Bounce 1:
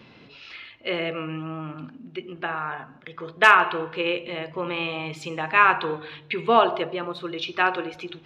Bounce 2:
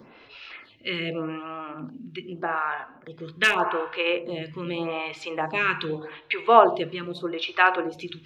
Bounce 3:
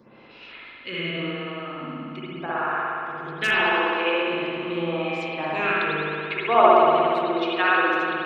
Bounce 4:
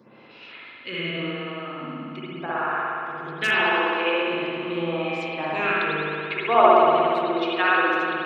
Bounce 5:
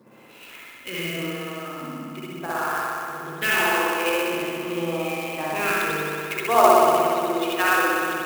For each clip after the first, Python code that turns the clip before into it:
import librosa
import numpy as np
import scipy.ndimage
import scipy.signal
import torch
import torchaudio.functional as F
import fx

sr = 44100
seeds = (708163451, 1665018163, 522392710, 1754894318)

y1 = fx.stagger_phaser(x, sr, hz=0.83)
y1 = F.gain(torch.from_numpy(y1), 3.5).numpy()
y2 = fx.rev_spring(y1, sr, rt60_s=2.7, pass_ms=(59,), chirp_ms=50, drr_db=-7.5)
y2 = F.gain(torch.from_numpy(y2), -5.5).numpy()
y3 = scipy.signal.sosfilt(scipy.signal.butter(2, 89.0, 'highpass', fs=sr, output='sos'), y2)
y4 = fx.clock_jitter(y3, sr, seeds[0], jitter_ms=0.026)